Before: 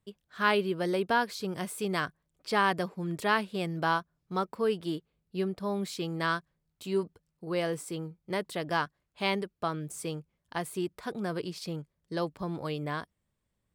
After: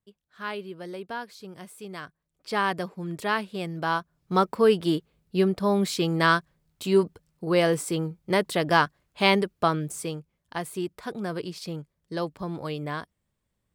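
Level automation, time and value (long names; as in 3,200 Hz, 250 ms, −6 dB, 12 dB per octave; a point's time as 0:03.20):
0:02.02 −8 dB
0:02.57 +0.5 dB
0:03.86 +0.5 dB
0:04.34 +9 dB
0:09.68 +9 dB
0:10.18 +2 dB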